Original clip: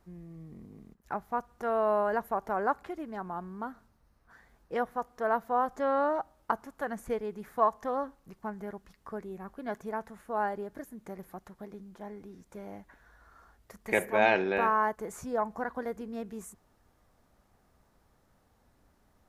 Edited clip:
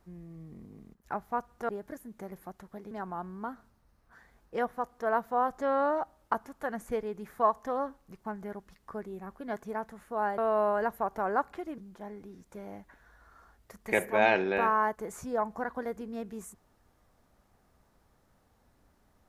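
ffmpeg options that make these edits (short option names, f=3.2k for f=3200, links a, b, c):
-filter_complex "[0:a]asplit=5[a][b][c][d][e];[a]atrim=end=1.692[f];[b]atrim=start=10.558:end=11.782[g];[c]atrim=start=3.088:end=10.562[h];[d]atrim=start=1.688:end=3.092[i];[e]atrim=start=11.778[j];[f][g]acrossfade=d=0.004:c1=hsin:c2=hsin[k];[k][h]acrossfade=d=0.004:c1=hsin:c2=hsin[l];[l][i]acrossfade=d=0.004:c1=hsin:c2=hsin[m];[m][j]acrossfade=d=0.004:c1=hsin:c2=hsin"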